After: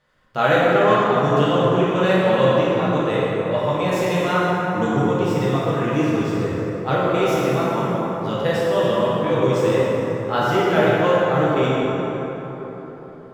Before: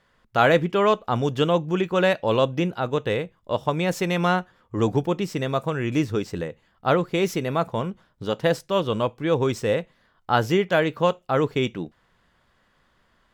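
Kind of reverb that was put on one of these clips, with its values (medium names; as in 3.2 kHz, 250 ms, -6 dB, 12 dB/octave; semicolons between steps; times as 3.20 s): plate-style reverb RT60 4.3 s, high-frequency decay 0.45×, DRR -8.5 dB; trim -5 dB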